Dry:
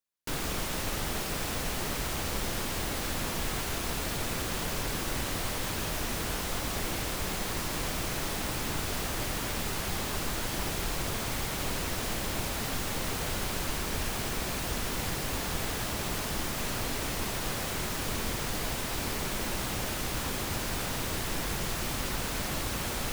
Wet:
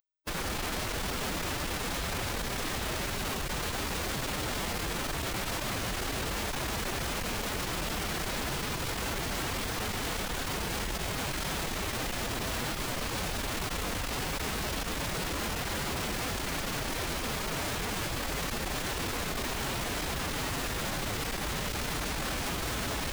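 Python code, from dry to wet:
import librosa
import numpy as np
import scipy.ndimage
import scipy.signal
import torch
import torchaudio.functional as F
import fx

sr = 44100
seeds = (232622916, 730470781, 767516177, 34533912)

y = fx.schmitt(x, sr, flips_db=-38.0)
y = fx.pitch_keep_formants(y, sr, semitones=2.5)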